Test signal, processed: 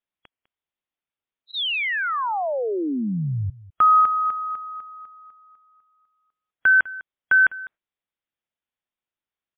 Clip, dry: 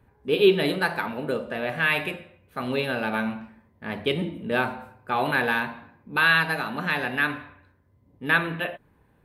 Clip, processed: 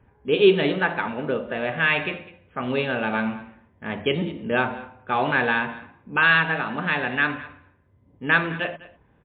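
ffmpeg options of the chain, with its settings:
ffmpeg -i in.wav -af "aecho=1:1:202:0.112,volume=2.5dB" -ar 8000 -c:a libmp3lame -b:a 40k out.mp3

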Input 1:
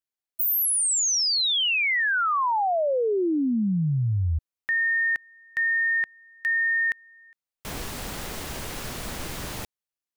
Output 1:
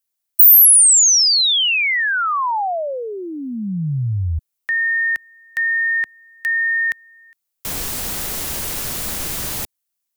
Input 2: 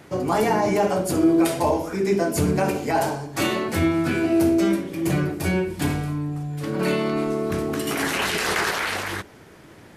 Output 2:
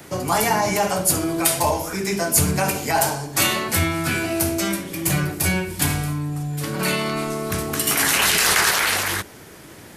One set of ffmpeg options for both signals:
ffmpeg -i in.wav -filter_complex "[0:a]acrossover=split=190|620|3000[link_01][link_02][link_03][link_04];[link_02]acompressor=threshold=-37dB:ratio=6:release=228[link_05];[link_01][link_05][link_03][link_04]amix=inputs=4:normalize=0,crystalizer=i=2:c=0,volume=3.5dB" out.wav

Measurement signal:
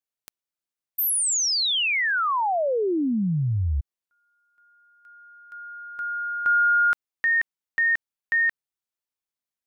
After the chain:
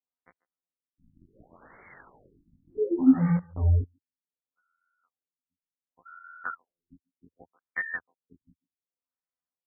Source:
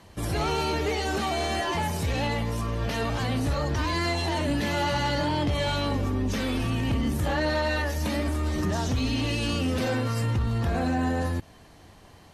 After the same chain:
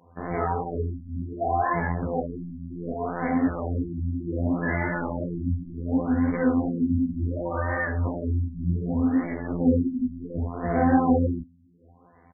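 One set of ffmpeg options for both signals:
ffmpeg -i in.wav -filter_complex "[0:a]highpass=frequency=67:width=0.5412,highpass=frequency=67:width=1.3066,highshelf=frequency=4000:gain=-7.5,aecho=1:1:4:0.9,afftfilt=real='hypot(re,im)*cos(PI*b)':imag='0':win_size=2048:overlap=0.75,asplit=2[link_01][link_02];[link_02]acrusher=bits=4:mix=0:aa=0.000001,volume=-3dB[link_03];[link_01][link_03]amix=inputs=2:normalize=0,flanger=delay=17:depth=5.3:speed=2.8,asplit=2[link_04][link_05];[link_05]adelay=140,highpass=300,lowpass=3400,asoftclip=type=hard:threshold=-16.5dB,volume=-22dB[link_06];[link_04][link_06]amix=inputs=2:normalize=0,afftfilt=real='re*lt(b*sr/1024,290*pow(2300/290,0.5+0.5*sin(2*PI*0.67*pts/sr)))':imag='im*lt(b*sr/1024,290*pow(2300/290,0.5+0.5*sin(2*PI*0.67*pts/sr)))':win_size=1024:overlap=0.75,volume=2dB" out.wav

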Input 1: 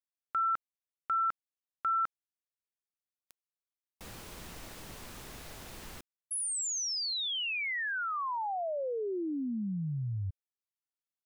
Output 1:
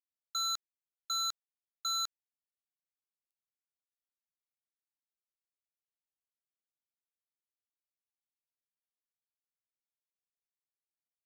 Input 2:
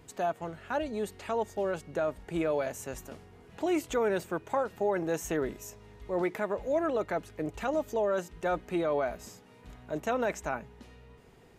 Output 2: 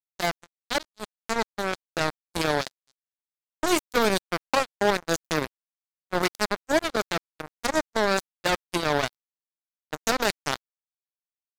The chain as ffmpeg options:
ffmpeg -i in.wav -af "acrusher=bits=3:mix=0:aa=0.5,aexciter=amount=4.2:drive=1.5:freq=3800,agate=range=-22dB:threshold=-49dB:ratio=3:release=23:detection=peak,volume=6.5dB" out.wav

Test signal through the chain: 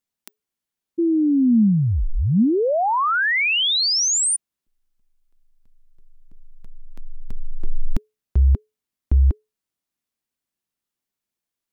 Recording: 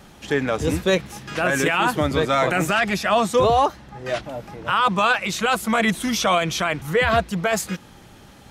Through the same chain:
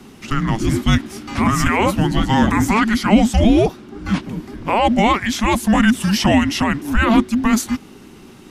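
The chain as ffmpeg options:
ffmpeg -i in.wav -af "afreqshift=-430,equalizer=frequency=220:width=2.2:gain=5.5,volume=3dB" out.wav

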